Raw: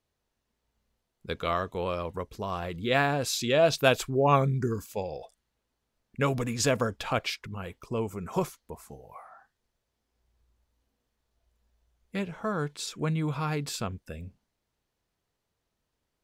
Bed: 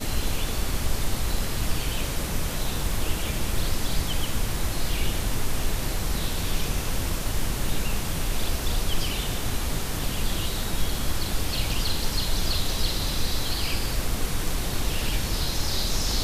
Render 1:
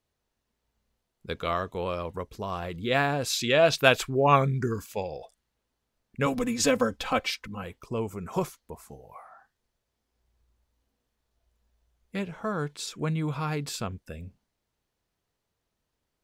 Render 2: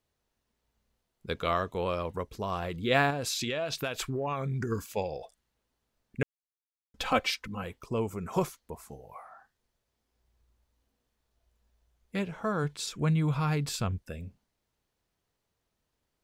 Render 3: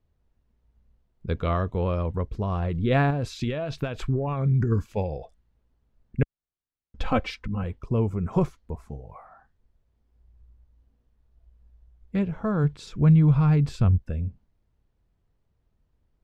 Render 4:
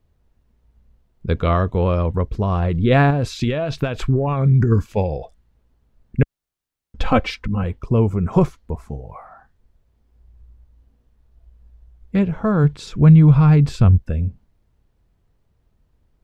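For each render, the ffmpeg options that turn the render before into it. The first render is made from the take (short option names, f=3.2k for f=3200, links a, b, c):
-filter_complex "[0:a]asettb=1/sr,asplit=3[a][b][c];[a]atrim=end=3.304[d];[b]atrim=start=3.3:end=5.08,asetpts=PTS-STARTPTS,afade=t=in:d=0.004:c=qsin,afade=t=out:st=1.776:d=0.004:c=qsin,equalizer=f=2k:w=0.65:g=5.5[e];[c]atrim=start=5.076[f];[d][e]acrossfade=d=0.004:c1=hsin:c2=qsin[g];[g][f]acrossfade=d=0.004:c1=qsin:c2=hsin,asettb=1/sr,asplit=3[h][i][j];[h]atrim=end=6.264[k];[i]atrim=start=6.26:end=7.64,asetpts=PTS-STARTPTS,afade=t=in:d=0.004:c=qsin,afade=t=out:st=1.376:d=0.004:c=qsin,aecho=1:1:3.9:0.83,atrim=end_sample=60858[l];[j]atrim=start=7.636[m];[k][l]acrossfade=d=0.004:c1=hsin:c2=qsin[n];[n][m]acrossfade=d=0.004:c1=qsin:c2=hsin"
-filter_complex "[0:a]asettb=1/sr,asplit=3[a][b][c];[a]atrim=end=3.104[d];[b]atrim=start=3.1:end=4.72,asetpts=PTS-STARTPTS,afade=t=in:d=0.004:c=qsin,afade=t=out:st=1.616:d=0.004:c=qsin,acompressor=threshold=-28dB:ratio=12:attack=3.2:release=140:knee=1:detection=peak[e];[c]atrim=start=4.716[f];[d][e]acrossfade=d=0.004:c1=hsin:c2=qsin[g];[g][f]acrossfade=d=0.004:c1=qsin:c2=hsin,asplit=3[h][i][j];[h]afade=t=out:st=12.63:d=0.02[k];[i]asubboost=boost=2:cutoff=170,afade=t=in:st=12.63:d=0.02,afade=t=out:st=14.02:d=0.02[l];[j]afade=t=in:st=14.02:d=0.02[m];[k][l][m]amix=inputs=3:normalize=0,asplit=3[n][o][p];[n]atrim=end=6.23,asetpts=PTS-STARTPTS,afade=t=out:st=6.226:d=0.004:c=hsin[q];[o]atrim=start=6.23:end=6.94,asetpts=PTS-STARTPTS,volume=0[r];[p]atrim=start=6.94,asetpts=PTS-STARTPTS,afade=t=in:d=0.004:c=hsin[s];[q][r][s]concat=n=3:v=0:a=1"
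-af "aemphasis=mode=reproduction:type=riaa"
-af "volume=7.5dB,alimiter=limit=-3dB:level=0:latency=1"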